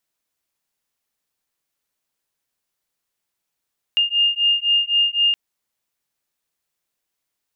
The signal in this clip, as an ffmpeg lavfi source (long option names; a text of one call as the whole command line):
ffmpeg -f lavfi -i "aevalsrc='0.119*(sin(2*PI*2820*t)+sin(2*PI*2823.9*t))':duration=1.37:sample_rate=44100" out.wav